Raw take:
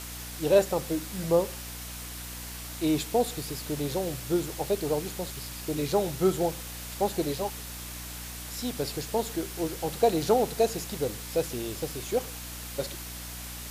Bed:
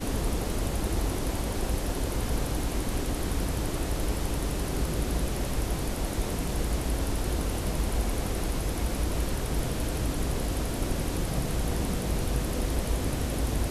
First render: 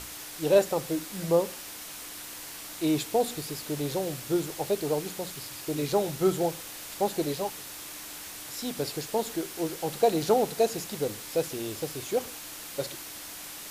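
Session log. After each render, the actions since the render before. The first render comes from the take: hum notches 60/120/180/240 Hz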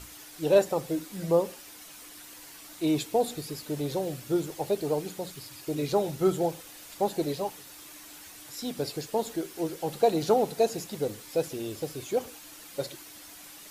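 noise reduction 8 dB, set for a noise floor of -42 dBFS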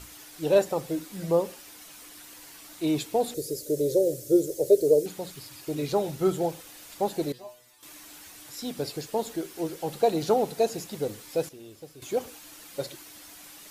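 3.34–5.06 s: FFT filter 120 Hz 0 dB, 210 Hz -8 dB, 400 Hz +10 dB, 570 Hz +10 dB, 820 Hz -20 dB, 1.9 kHz -11 dB, 2.7 kHz -13 dB, 6.3 kHz +5 dB; 7.32–7.83 s: inharmonic resonator 120 Hz, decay 0.35 s, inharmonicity 0.002; 11.49–12.02 s: gain -11 dB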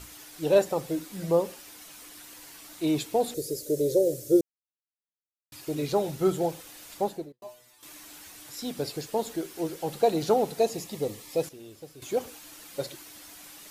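4.41–5.52 s: mute; 6.95–7.42 s: studio fade out; 10.62–11.43 s: Butterworth band-stop 1.5 kHz, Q 5.3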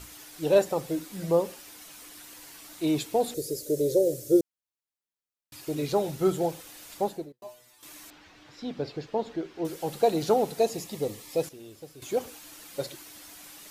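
8.10–9.65 s: distance through air 210 m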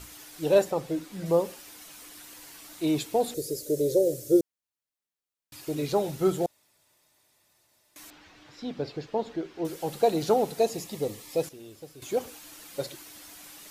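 0.70–1.26 s: treble shelf 6.8 kHz -8.5 dB; 6.46–7.96 s: room tone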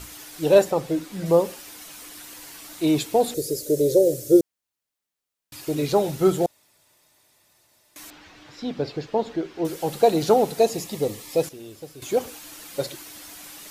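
trim +5.5 dB

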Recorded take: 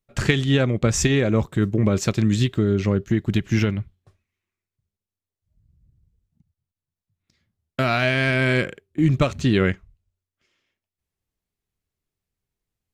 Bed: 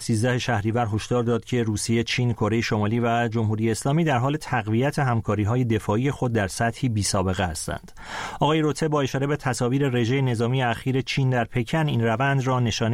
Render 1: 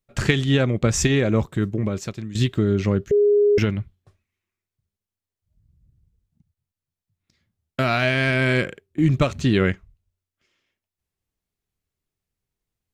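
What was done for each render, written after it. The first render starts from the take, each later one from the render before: 1.37–2.35 s: fade out linear, to -17.5 dB; 3.11–3.58 s: bleep 412 Hz -13 dBFS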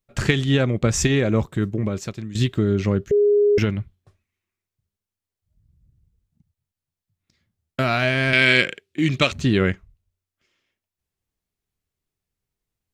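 8.33–9.32 s: frequency weighting D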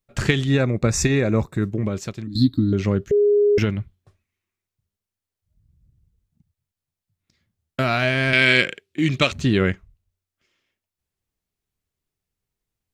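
0.47–1.65 s: Butterworth band-stop 3.1 kHz, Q 4.2; 2.27–2.73 s: FFT filter 120 Hz 0 dB, 170 Hz -7 dB, 280 Hz +13 dB, 420 Hz -24 dB, 1.1 kHz -12 dB, 1.8 kHz -18 dB, 2.9 kHz -28 dB, 4.2 kHz +12 dB, 6.1 kHz -22 dB, 11 kHz -1 dB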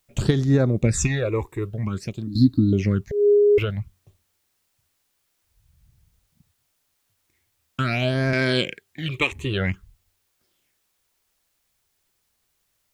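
phase shifter stages 8, 0.51 Hz, lowest notch 180–3000 Hz; word length cut 12-bit, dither triangular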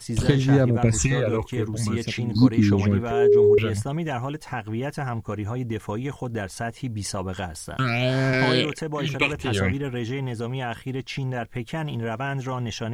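add bed -6.5 dB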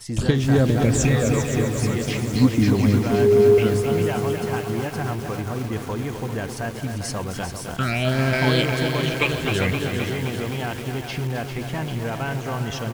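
on a send: feedback delay 397 ms, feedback 39%, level -9 dB; on the sum: bit-crushed delay 260 ms, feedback 80%, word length 6-bit, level -7 dB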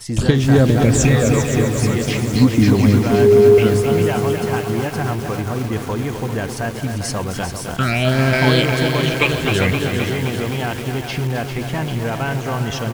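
trim +5 dB; peak limiter -2 dBFS, peak gain reduction 3 dB

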